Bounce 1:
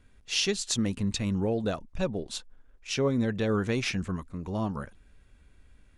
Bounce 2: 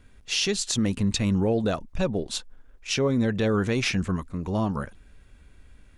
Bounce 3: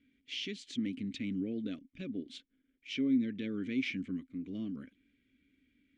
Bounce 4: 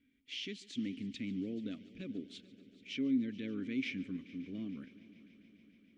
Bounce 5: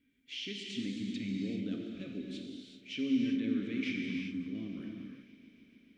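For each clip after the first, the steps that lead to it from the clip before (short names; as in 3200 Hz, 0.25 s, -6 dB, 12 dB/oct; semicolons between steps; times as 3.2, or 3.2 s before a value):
limiter -21 dBFS, peak gain reduction 6.5 dB; gain +5.5 dB
vowel filter i
multi-head echo 0.144 s, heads first and third, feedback 73%, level -21 dB; gain -3 dB
non-linear reverb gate 0.42 s flat, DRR -0.5 dB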